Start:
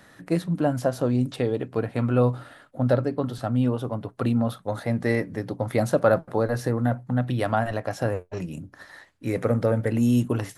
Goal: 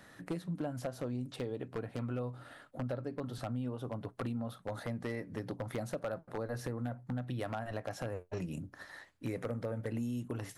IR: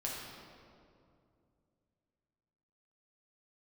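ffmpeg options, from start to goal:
-af "acompressor=threshold=-29dB:ratio=10,aeval=exprs='0.0708*(abs(mod(val(0)/0.0708+3,4)-2)-1)':c=same,volume=-4.5dB"

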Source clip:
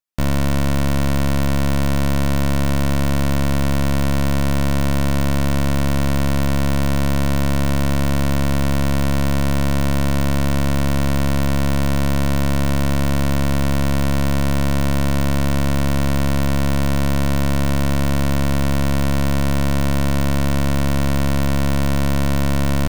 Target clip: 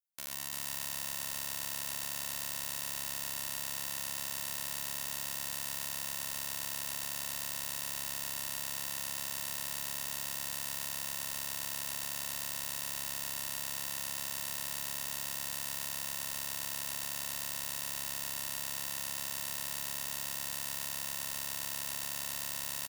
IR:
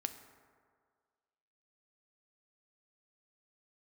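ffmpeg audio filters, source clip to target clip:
-filter_complex "[0:a]aderivative,asplit=5[a][b][c][d][e];[b]adelay=341,afreqshift=-30,volume=-3.5dB[f];[c]adelay=682,afreqshift=-60,volume=-13.1dB[g];[d]adelay=1023,afreqshift=-90,volume=-22.8dB[h];[e]adelay=1364,afreqshift=-120,volume=-32.4dB[i];[a][f][g][h][i]amix=inputs=5:normalize=0,asplit=2[j][k];[1:a]atrim=start_sample=2205,asetrate=74970,aresample=44100,adelay=130[l];[k][l]afir=irnorm=-1:irlink=0,volume=3dB[m];[j][m]amix=inputs=2:normalize=0,volume=-7dB"

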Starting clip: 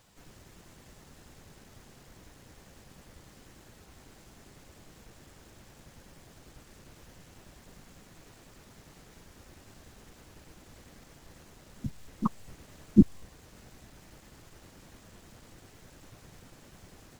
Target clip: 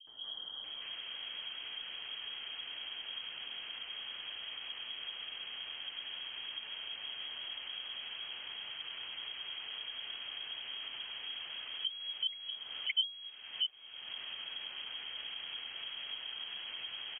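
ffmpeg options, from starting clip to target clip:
-filter_complex "[0:a]acrossover=split=290|2100[a][b][c];[c]adelay=70[d];[b]adelay=640[e];[a][e][d]amix=inputs=3:normalize=0,lowpass=f=2.8k:t=q:w=0.5098,lowpass=f=2.8k:t=q:w=0.6013,lowpass=f=2.8k:t=q:w=0.9,lowpass=f=2.8k:t=q:w=2.563,afreqshift=-3300,acompressor=threshold=-51dB:ratio=3,volume=12dB"

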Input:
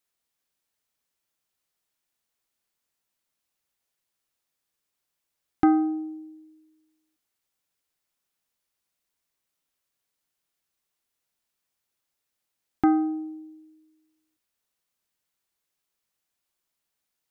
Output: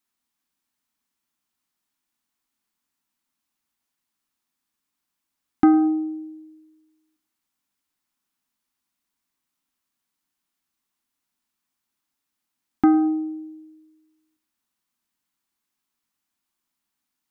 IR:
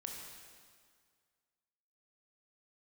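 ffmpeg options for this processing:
-filter_complex "[0:a]equalizer=f=125:t=o:w=1:g=-3,equalizer=f=250:t=o:w=1:g=11,equalizer=f=500:t=o:w=1:g=-9,equalizer=f=1k:t=o:w=1:g=5,asplit=2[a][b];[1:a]atrim=start_sample=2205,atrim=end_sample=6615,adelay=106[c];[b][c]afir=irnorm=-1:irlink=0,volume=-15dB[d];[a][d]amix=inputs=2:normalize=0"

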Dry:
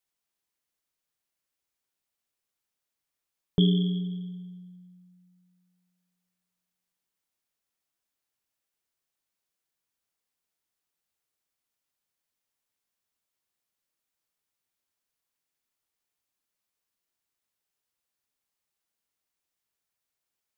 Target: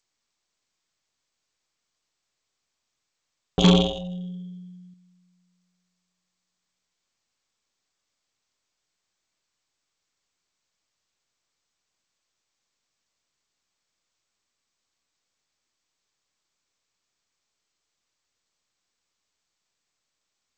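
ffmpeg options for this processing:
-filter_complex "[0:a]asettb=1/sr,asplit=3[a][b][c];[a]atrim=end=3.644[d];[b]atrim=start=3.64:end=4.94,asetpts=PTS-STARTPTS,afade=t=in:d=0.004:c=qsin,afade=t=out:st=1.296:d=0.004:c=qsin,acontrast=71[e];[c]atrim=start=4.936[f];[d][e]acrossfade=d=0.004:c1=hsin:c2=qsin[g];[g][f]acrossfade=d=0.004:c1=qsin:c2=hsin,aeval=exprs='0.422*(cos(1*acos(clip(val(0)/0.422,-1,1)))-cos(1*PI/2))+0.00596*(cos(4*acos(clip(val(0)/0.422,-1,1)))-cos(4*PI/2))+0.106*(cos(7*acos(clip(val(0)/0.422,-1,1)))-cos(7*PI/2))':c=same" -ar 16000 -c:a g722

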